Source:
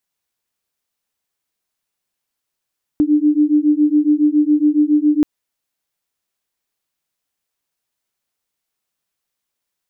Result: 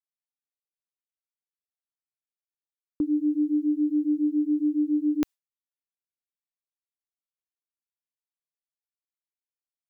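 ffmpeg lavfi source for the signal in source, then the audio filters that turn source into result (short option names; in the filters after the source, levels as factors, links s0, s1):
-f lavfi -i "aevalsrc='0.2*(sin(2*PI*295*t)+sin(2*PI*302.2*t))':d=2.23:s=44100"
-af "lowshelf=f=170:g=-11.5,agate=range=0.0224:threshold=0.0562:ratio=3:detection=peak,equalizer=f=370:w=0.31:g=-7.5"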